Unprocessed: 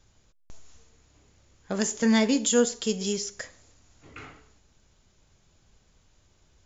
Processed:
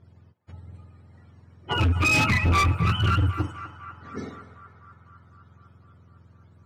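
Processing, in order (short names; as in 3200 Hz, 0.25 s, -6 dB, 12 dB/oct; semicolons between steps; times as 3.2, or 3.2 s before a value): spectrum mirrored in octaves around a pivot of 750 Hz; notch 2700 Hz, Q 15; in parallel at -3 dB: limiter -17.5 dBFS, peak gain reduction 7.5 dB; on the sum: hard clip -21.5 dBFS, distortion -7 dB; low-pass opened by the level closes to 2000 Hz, open at -26 dBFS; narrowing echo 0.252 s, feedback 75%, band-pass 1200 Hz, level -11.5 dB; gain +3.5 dB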